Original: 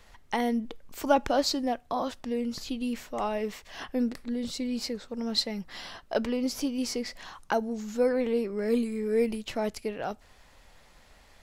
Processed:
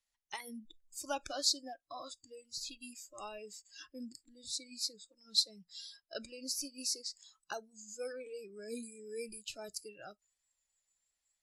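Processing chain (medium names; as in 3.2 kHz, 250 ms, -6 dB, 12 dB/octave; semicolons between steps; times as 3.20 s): Chebyshev low-pass 11 kHz, order 4; pre-emphasis filter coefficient 0.9; spectral noise reduction 24 dB; trim +3 dB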